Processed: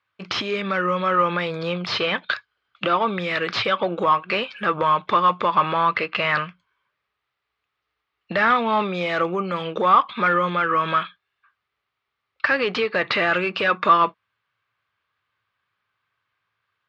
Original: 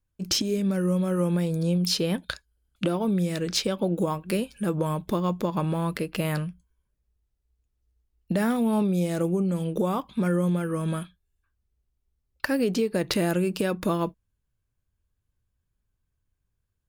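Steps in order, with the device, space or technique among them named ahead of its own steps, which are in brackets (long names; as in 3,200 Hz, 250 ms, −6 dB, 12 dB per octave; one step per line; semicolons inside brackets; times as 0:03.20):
tilt shelving filter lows −8.5 dB, about 770 Hz
overdrive pedal into a guitar cabinet (mid-hump overdrive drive 24 dB, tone 1,900 Hz, clips at −3 dBFS; loudspeaker in its box 100–4,100 Hz, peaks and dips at 110 Hz +9 dB, 270 Hz −3 dB, 1,200 Hz +9 dB, 2,100 Hz +4 dB)
level −4.5 dB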